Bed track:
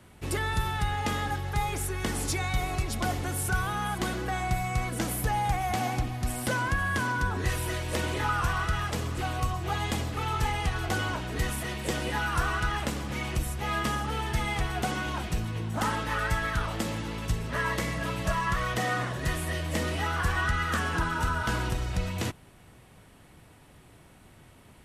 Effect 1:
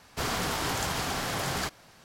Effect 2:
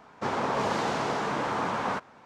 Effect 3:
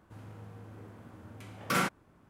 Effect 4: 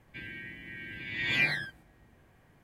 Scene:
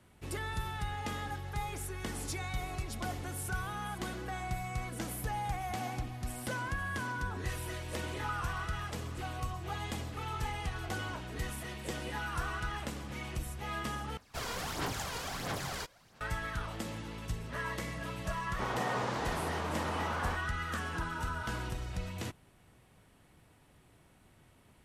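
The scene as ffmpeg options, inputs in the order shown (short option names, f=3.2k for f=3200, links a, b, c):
-filter_complex "[0:a]volume=-8.5dB[a];[1:a]aphaser=in_gain=1:out_gain=1:delay=2.1:decay=0.5:speed=1.5:type=sinusoidal[b];[a]asplit=2[c][d];[c]atrim=end=14.174[e];[b]atrim=end=2.04,asetpts=PTS-STARTPTS,volume=-9dB[f];[d]atrim=start=16.206[g];[2:a]atrim=end=2.25,asetpts=PTS-STARTPTS,volume=-8dB,afade=t=in:d=0.004:c=hsin,afade=t=out:st=2.246:d=0.004:c=hsin,adelay=18370[h];[e][f]acrossfade=d=0.004:c1=hsin:c2=hsin[i];[i][g]acrossfade=d=0.004:c1=hsin:c2=hsin[j];[j][h]amix=inputs=2:normalize=0"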